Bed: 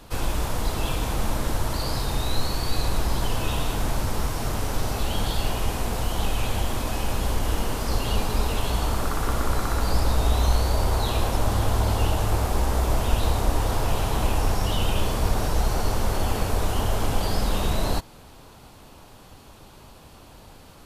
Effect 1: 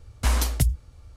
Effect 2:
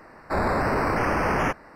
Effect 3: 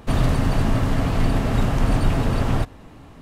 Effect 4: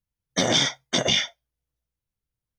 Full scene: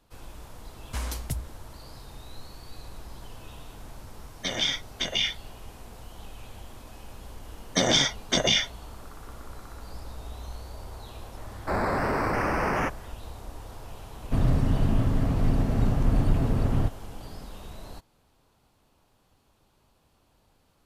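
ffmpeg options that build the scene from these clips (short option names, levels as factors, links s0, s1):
-filter_complex "[4:a]asplit=2[s0][s1];[0:a]volume=0.119[s2];[1:a]highpass=52[s3];[s0]equalizer=f=2700:w=1.1:g=11[s4];[3:a]tiltshelf=f=710:g=5[s5];[s3]atrim=end=1.16,asetpts=PTS-STARTPTS,volume=0.355,afade=t=in:d=0.004:c=hsin,afade=t=out:st=1.156:d=0.004:c=hsin,adelay=700[s6];[s4]atrim=end=2.58,asetpts=PTS-STARTPTS,volume=0.237,afade=t=in:d=0.004:c=hsin,afade=t=out:st=2.576:d=0.004:c=hsin,adelay=4070[s7];[s1]atrim=end=2.58,asetpts=PTS-STARTPTS,volume=0.891,afade=t=in:d=0.004:c=hsin,afade=t=out:st=2.576:d=0.004:c=hsin,adelay=7390[s8];[2:a]atrim=end=1.75,asetpts=PTS-STARTPTS,volume=0.708,afade=t=in:d=0.004:c=hsin,afade=t=out:st=1.746:d=0.004:c=hsin,adelay=11370[s9];[s5]atrim=end=3.21,asetpts=PTS-STARTPTS,volume=0.398,afade=t=in:d=0.004:c=hsin,afade=t=out:st=3.206:d=0.004:c=hsin,adelay=14240[s10];[s2][s6][s7][s8][s9][s10]amix=inputs=6:normalize=0"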